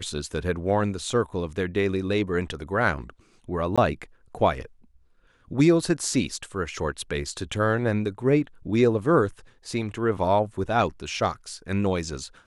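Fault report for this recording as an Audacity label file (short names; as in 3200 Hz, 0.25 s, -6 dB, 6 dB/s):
3.760000	3.780000	gap 16 ms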